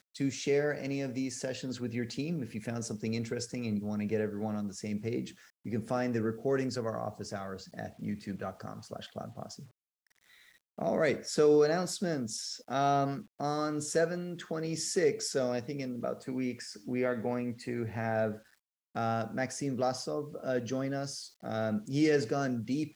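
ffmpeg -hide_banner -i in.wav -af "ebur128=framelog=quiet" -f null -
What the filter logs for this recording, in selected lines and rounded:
Integrated loudness:
  I:         -33.2 LUFS
  Threshold: -43.6 LUFS
Loudness range:
  LRA:         7.2 LU
  Threshold: -53.8 LUFS
  LRA low:   -37.4 LUFS
  LRA high:  -30.3 LUFS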